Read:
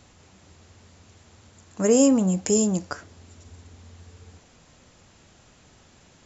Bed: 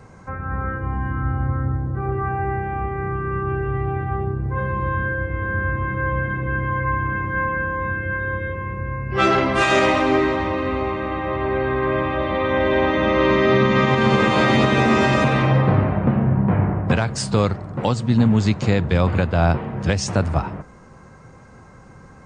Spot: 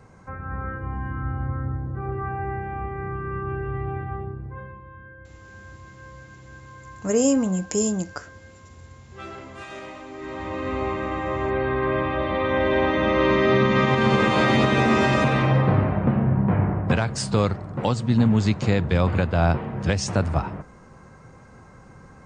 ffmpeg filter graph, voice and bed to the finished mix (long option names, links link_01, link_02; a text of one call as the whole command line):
ffmpeg -i stem1.wav -i stem2.wav -filter_complex "[0:a]adelay=5250,volume=-2dB[link_01];[1:a]volume=13.5dB,afade=type=out:start_time=3.95:duration=0.88:silence=0.158489,afade=type=in:start_time=10.17:duration=0.7:silence=0.112202[link_02];[link_01][link_02]amix=inputs=2:normalize=0" out.wav